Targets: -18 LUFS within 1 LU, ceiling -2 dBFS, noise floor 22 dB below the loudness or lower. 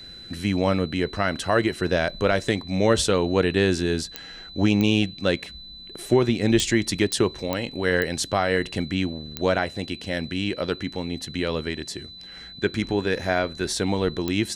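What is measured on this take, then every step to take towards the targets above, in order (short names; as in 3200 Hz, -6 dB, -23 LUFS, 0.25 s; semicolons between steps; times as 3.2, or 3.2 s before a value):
clicks 8; steady tone 4000 Hz; tone level -40 dBFS; loudness -24.0 LUFS; peak -7.0 dBFS; loudness target -18.0 LUFS
-> de-click; notch 4000 Hz, Q 30; gain +6 dB; limiter -2 dBFS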